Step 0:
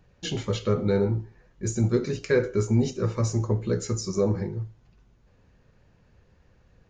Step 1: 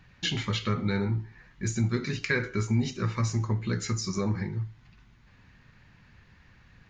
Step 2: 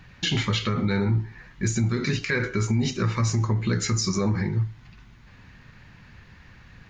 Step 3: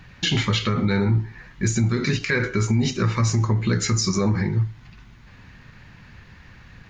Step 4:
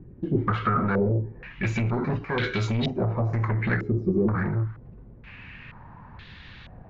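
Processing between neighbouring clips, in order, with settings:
graphic EQ with 10 bands 125 Hz +4 dB, 250 Hz +4 dB, 500 Hz −9 dB, 1,000 Hz +5 dB, 2,000 Hz +11 dB, 4,000 Hz +7 dB; downward compressor 1.5 to 1, threshold −34 dBFS, peak gain reduction 7.5 dB
brickwall limiter −22.5 dBFS, peak gain reduction 8.5 dB; level +7.5 dB
every ending faded ahead of time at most 280 dB per second; level +3 dB
soft clipping −21.5 dBFS, distortion −10 dB; low-pass on a step sequencer 2.1 Hz 360–3,600 Hz

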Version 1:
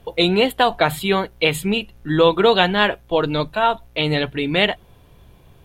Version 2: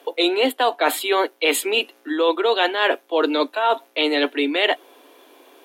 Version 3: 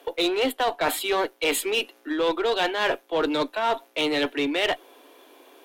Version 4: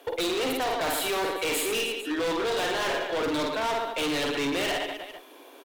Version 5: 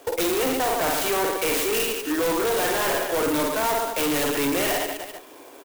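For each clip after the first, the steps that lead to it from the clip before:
Butterworth high-pass 260 Hz 96 dB per octave; reversed playback; downward compressor 6 to 1, threshold −23 dBFS, peak gain reduction 12.5 dB; reversed playback; level +7 dB
one-sided soft clipper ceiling −12 dBFS; in parallel at −6 dB: gain into a clipping stage and back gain 22.5 dB; on the sum: level −5.5 dB
reverse bouncing-ball delay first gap 50 ms, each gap 1.3×, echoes 5; hard clipping −25.5 dBFS, distortion −7 dB
converter with an unsteady clock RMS 0.059 ms; level +4.5 dB

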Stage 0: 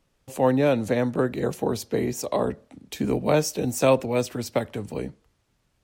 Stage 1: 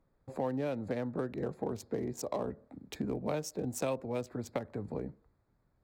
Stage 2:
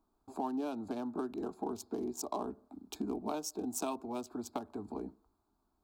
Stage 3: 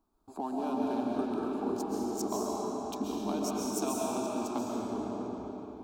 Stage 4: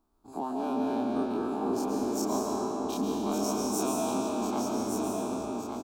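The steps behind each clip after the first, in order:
adaptive Wiener filter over 15 samples; downward compressor 3 to 1, threshold −31 dBFS, peak gain reduction 13 dB; level −3 dB
low-shelf EQ 150 Hz −8.5 dB; phaser with its sweep stopped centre 520 Hz, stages 6; level +3 dB
comb and all-pass reverb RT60 3.9 s, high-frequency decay 0.8×, pre-delay 95 ms, DRR −4.5 dB
every bin's largest magnitude spread in time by 60 ms; on a send: single-tap delay 1,165 ms −5.5 dB; on the sum: level −1.5 dB

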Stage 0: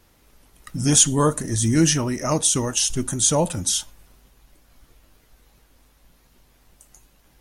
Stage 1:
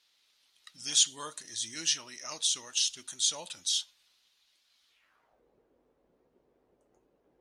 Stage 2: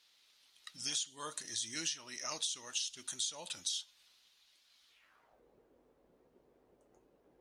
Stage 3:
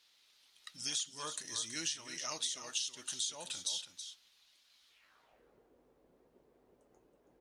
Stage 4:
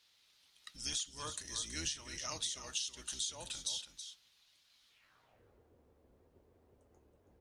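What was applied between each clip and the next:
band-pass filter sweep 3,900 Hz → 430 Hz, 0:04.88–0:05.44
downward compressor 12 to 1, threshold −36 dBFS, peak gain reduction 17.5 dB; level +1.5 dB
single-tap delay 325 ms −10 dB
sub-octave generator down 2 octaves, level +4 dB; level −1.5 dB

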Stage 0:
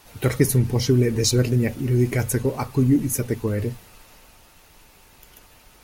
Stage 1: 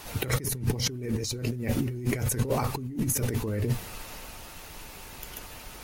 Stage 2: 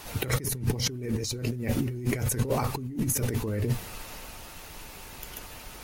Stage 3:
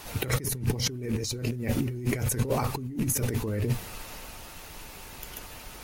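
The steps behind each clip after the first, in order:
compressor whose output falls as the input rises −30 dBFS, ratio −1
no processing that can be heard
loose part that buzzes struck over −25 dBFS, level −33 dBFS

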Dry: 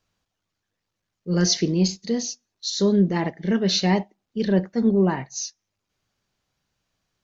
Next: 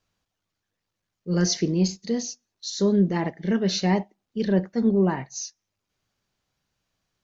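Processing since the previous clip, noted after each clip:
dynamic equaliser 3,600 Hz, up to −5 dB, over −39 dBFS, Q 1.2
level −1.5 dB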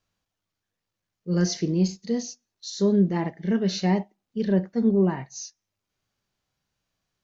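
harmonic and percussive parts rebalanced percussive −6 dB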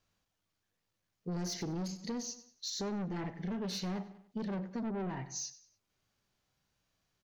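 soft clipping −27 dBFS, distortion −7 dB
repeating echo 96 ms, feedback 36%, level −18 dB
downward compressor, threshold −36 dBFS, peak gain reduction 8 dB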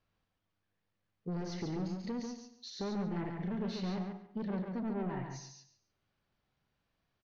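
high-frequency loss of the air 210 metres
on a send: repeating echo 140 ms, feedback 19%, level −5 dB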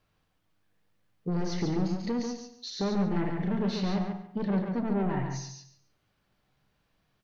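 convolution reverb RT60 0.40 s, pre-delay 7 ms, DRR 12 dB
level +7.5 dB

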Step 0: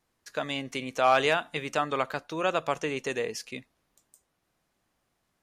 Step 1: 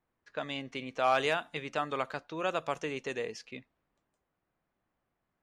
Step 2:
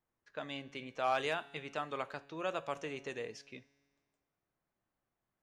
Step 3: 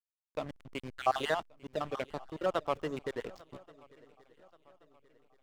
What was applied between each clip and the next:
low-pass that shuts in the quiet parts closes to 2,100 Hz, open at −23 dBFS; level −5 dB
tuned comb filter 140 Hz, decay 1.7 s, mix 50%; on a send at −15 dB: convolution reverb, pre-delay 4 ms
time-frequency cells dropped at random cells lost 48%; slack as between gear wheels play −41 dBFS; feedback echo with a long and a short gap by turns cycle 1,129 ms, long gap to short 3 to 1, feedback 41%, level −23 dB; level +7 dB

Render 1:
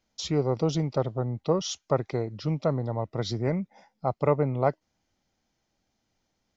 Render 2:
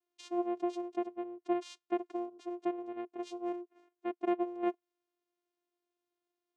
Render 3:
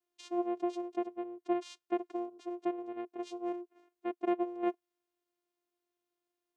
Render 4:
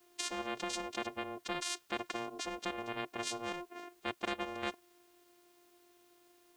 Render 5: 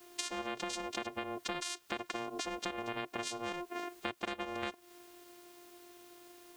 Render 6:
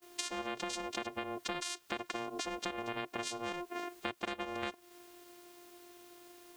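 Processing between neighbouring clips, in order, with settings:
channel vocoder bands 4, saw 351 Hz; level −8.5 dB
parametric band 490 Hz +2.5 dB 0.29 octaves
every bin compressed towards the loudest bin 4 to 1; level +2 dB
downward compressor, threshold −45 dBFS, peak gain reduction 13 dB; level +9.5 dB
noise gate −58 dBFS, range −20 dB

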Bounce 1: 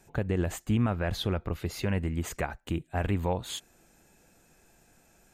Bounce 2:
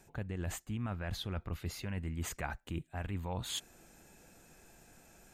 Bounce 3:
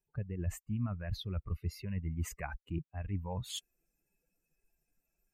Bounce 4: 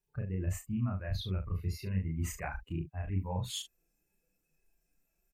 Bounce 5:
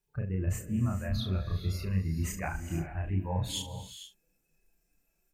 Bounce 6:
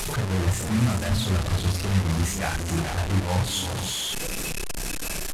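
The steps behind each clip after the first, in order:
dynamic equaliser 450 Hz, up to −6 dB, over −44 dBFS, Q 1; reversed playback; downward compressor 6 to 1, threshold −37 dBFS, peak gain reduction 13.5 dB; reversed playback; level +2 dB
spectral dynamics exaggerated over time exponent 2; low-shelf EQ 320 Hz +7 dB
loudspeakers that aren't time-aligned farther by 11 metres −1 dB, 25 metres −11 dB
reverb whose tail is shaped and stops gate 490 ms rising, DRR 9 dB; level +3 dB
linear delta modulator 64 kbit/s, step −29.5 dBFS; level +7 dB

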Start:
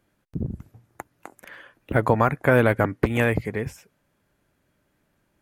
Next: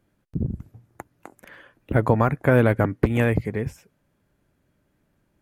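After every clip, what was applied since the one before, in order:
low-shelf EQ 470 Hz +7 dB
level −3.5 dB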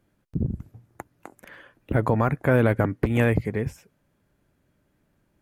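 brickwall limiter −9 dBFS, peak gain reduction 5 dB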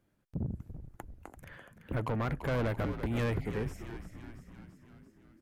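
soft clipping −21.5 dBFS, distortion −8 dB
on a send: echo with shifted repeats 338 ms, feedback 60%, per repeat −73 Hz, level −10 dB
on the sum: level −6 dB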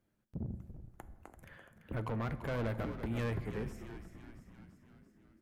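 convolution reverb RT60 1.5 s, pre-delay 5 ms, DRR 12 dB
level −5 dB

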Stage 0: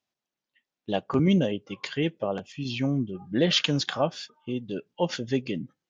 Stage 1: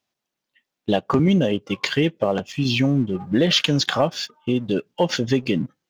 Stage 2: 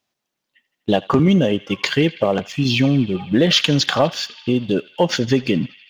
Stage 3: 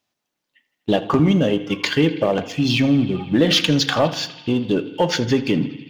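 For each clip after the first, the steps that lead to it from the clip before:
downward compressor 3 to 1, threshold −28 dBFS, peak gain reduction 8.5 dB; leveller curve on the samples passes 1; level +8 dB
feedback echo with a band-pass in the loop 82 ms, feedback 84%, band-pass 2,700 Hz, level −16.5 dB; level +3 dB
in parallel at −9.5 dB: hard clipping −17 dBFS, distortion −8 dB; on the sum: feedback delay network reverb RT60 0.84 s, low-frequency decay 1.2×, high-frequency decay 0.35×, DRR 10.5 dB; level −3 dB

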